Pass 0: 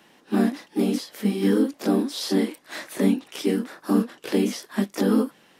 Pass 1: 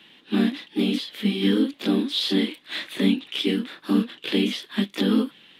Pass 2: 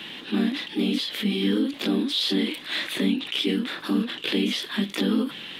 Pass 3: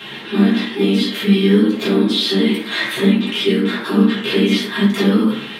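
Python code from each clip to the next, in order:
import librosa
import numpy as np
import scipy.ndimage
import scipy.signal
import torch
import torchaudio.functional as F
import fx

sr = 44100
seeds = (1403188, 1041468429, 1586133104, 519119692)

y1 = fx.curve_eq(x, sr, hz=(300.0, 670.0, 1600.0, 3500.0, 5500.0), db=(0, -7, 0, 13, -7))
y2 = fx.env_flatten(y1, sr, amount_pct=50)
y2 = y2 * 10.0 ** (-4.0 / 20.0)
y3 = fx.rev_fdn(y2, sr, rt60_s=0.77, lf_ratio=0.85, hf_ratio=0.4, size_ms=44.0, drr_db=-9.5)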